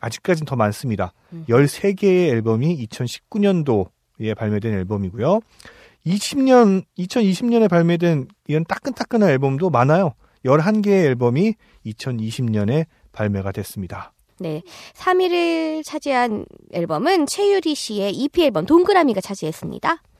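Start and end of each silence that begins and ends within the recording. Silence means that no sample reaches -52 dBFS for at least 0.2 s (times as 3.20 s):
3.90–4.15 s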